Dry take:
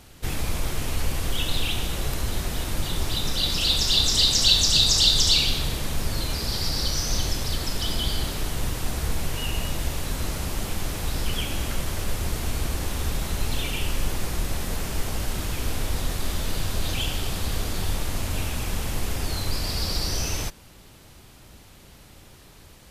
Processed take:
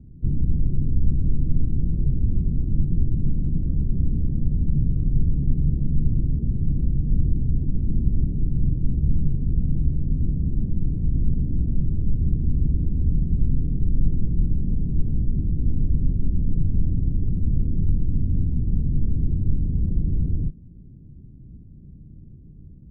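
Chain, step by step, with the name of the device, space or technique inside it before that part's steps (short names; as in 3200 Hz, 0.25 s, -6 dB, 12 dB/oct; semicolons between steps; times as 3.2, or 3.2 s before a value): the neighbour's flat through the wall (LPF 270 Hz 24 dB/oct; bell 150 Hz +5.5 dB 0.46 oct); gain +6.5 dB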